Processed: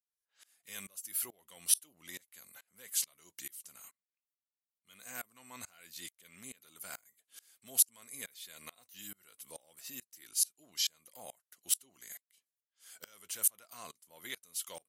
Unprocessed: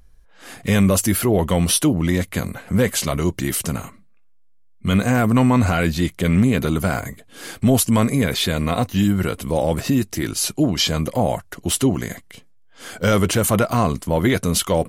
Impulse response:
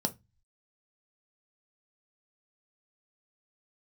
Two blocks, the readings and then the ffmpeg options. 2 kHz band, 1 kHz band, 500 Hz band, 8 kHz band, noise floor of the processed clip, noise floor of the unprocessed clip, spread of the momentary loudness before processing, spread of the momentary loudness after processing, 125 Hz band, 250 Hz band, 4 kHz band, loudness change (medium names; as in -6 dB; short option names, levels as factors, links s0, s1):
-23.5 dB, -31.0 dB, -36.0 dB, -9.5 dB, under -85 dBFS, -49 dBFS, 11 LU, 21 LU, under -40 dB, under -40 dB, -16.0 dB, -15.5 dB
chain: -af "aderivative,aeval=exprs='val(0)*pow(10,-27*if(lt(mod(-2.3*n/s,1),2*abs(-2.3)/1000),1-mod(-2.3*n/s,1)/(2*abs(-2.3)/1000),(mod(-2.3*n/s,1)-2*abs(-2.3)/1000)/(1-2*abs(-2.3)/1000))/20)':c=same,volume=0.531"